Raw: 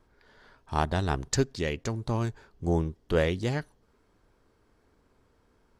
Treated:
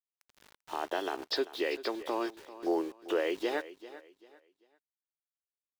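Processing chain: knee-point frequency compression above 2.5 kHz 1.5:1; Chebyshev band-pass 320–7600 Hz, order 4; band-stop 2.2 kHz, Q 19; in parallel at -1.5 dB: compression, threshold -40 dBFS, peak gain reduction 17.5 dB; on the sum: peak limiter -21 dBFS, peak gain reduction 10.5 dB; small samples zeroed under -46 dBFS; on a send: feedback delay 392 ms, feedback 30%, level -16 dB

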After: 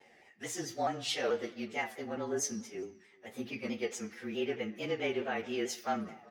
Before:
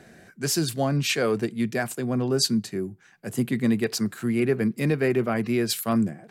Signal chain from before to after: frequency axis rescaled in octaves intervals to 109%; three-band isolator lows -17 dB, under 380 Hz, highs -18 dB, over 7.3 kHz; echo from a far wall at 66 m, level -26 dB; on a send at -7 dB: reverberation RT60 1.0 s, pre-delay 3 ms; on the sum: vibrato with a chosen wave saw down 4.6 Hz, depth 100 cents; trim -4.5 dB

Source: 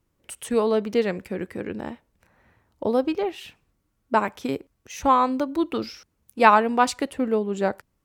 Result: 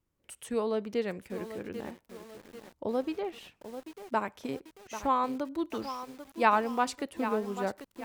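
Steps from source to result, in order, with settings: bit-crushed delay 791 ms, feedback 55%, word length 6-bit, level -10.5 dB; trim -9 dB

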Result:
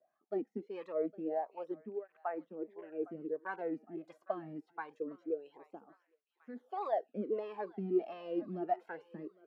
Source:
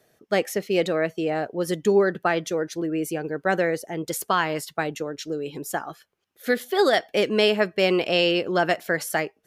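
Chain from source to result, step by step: rattle on loud lows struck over -31 dBFS, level -29 dBFS; 1.74–3.03 s: low-pass 2.5 kHz 24 dB/octave; de-esser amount 80%; wah-wah 1.5 Hz 210–1100 Hz, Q 5.4; on a send: thinning echo 810 ms, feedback 57%, high-pass 1.2 kHz, level -16 dB; on the sum: cancelling through-zero flanger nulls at 0.24 Hz, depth 2.3 ms; trim -1.5 dB

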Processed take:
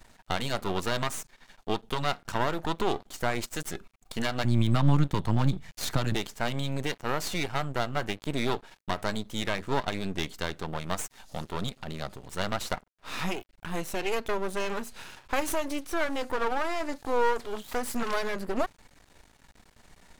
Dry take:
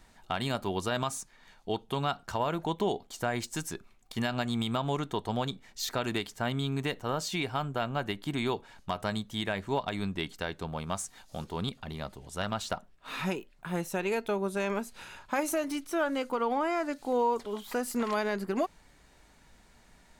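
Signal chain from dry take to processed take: 4.44–6.15 s: resonant low shelf 210 Hz +8 dB, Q 3; half-wave rectifier; trim +6 dB

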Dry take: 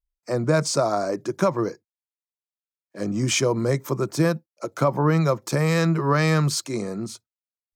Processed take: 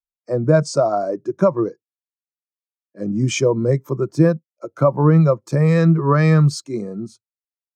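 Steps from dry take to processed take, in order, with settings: spectral contrast expander 1.5:1; trim +5 dB

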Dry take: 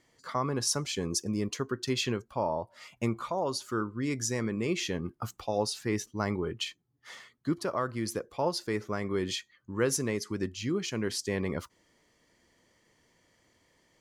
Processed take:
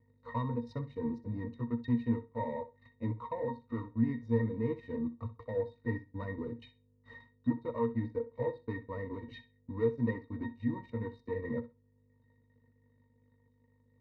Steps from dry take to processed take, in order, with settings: sawtooth pitch modulation -2 st, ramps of 183 ms; low-pass 2.6 kHz 12 dB/octave; bass shelf 73 Hz -11.5 dB; transient shaper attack +1 dB, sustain -12 dB; hum 50 Hz, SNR 21 dB; waveshaping leveller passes 3; pitch-class resonator A#, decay 0.12 s; flutter echo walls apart 10.9 m, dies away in 0.25 s; on a send at -12.5 dB: reverberation RT60 0.25 s, pre-delay 3 ms

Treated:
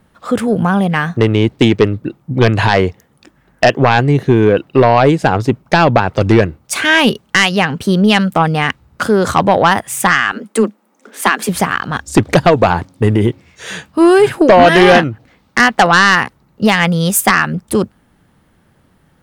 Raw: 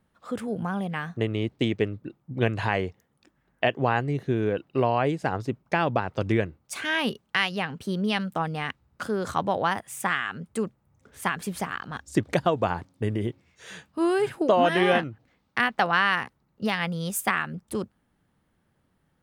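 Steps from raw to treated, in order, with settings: 10.32–11.49 s: steep high-pass 200 Hz 96 dB/octave; sine folder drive 5 dB, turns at -9 dBFS; trim +7.5 dB

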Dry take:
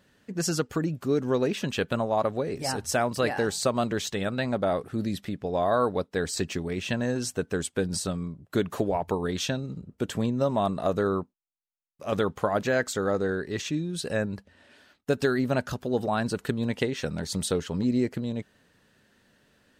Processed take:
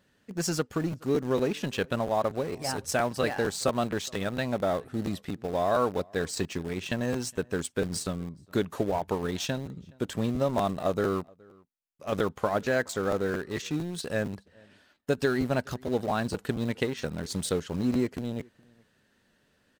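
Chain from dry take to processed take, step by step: in parallel at -7.5 dB: small samples zeroed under -27.5 dBFS; on the sum: echo from a far wall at 72 m, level -27 dB; crackling interface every 0.23 s, samples 512, repeat, from 0.68 s; trim -4.5 dB

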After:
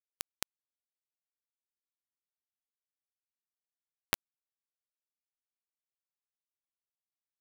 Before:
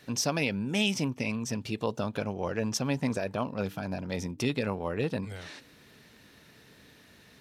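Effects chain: compression 3:1, threshold -32 dBFS, peak gain reduction 7 dB; comb of notches 260 Hz; bit crusher 4-bit; trim +10.5 dB

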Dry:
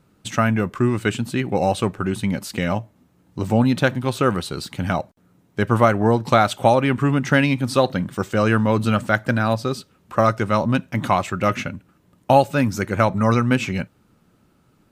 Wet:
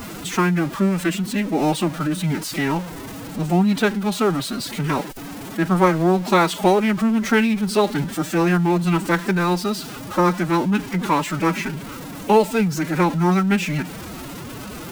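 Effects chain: jump at every zero crossing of -26 dBFS; formant-preserving pitch shift +8 st; trim -1 dB

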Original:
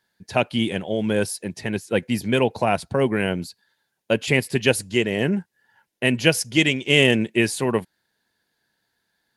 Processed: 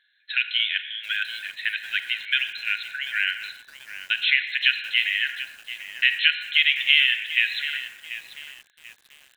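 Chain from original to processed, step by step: treble shelf 3.2 kHz +9.5 dB; compression 4:1, threshold -18 dBFS, peak gain reduction 9 dB; brick-wall FIR band-pass 1.4–4.2 kHz; on a send at -8.5 dB: reverberation, pre-delay 23 ms; on the sum: bit-crushed delay 738 ms, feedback 35%, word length 7-bit, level -13 dB; trim +5 dB

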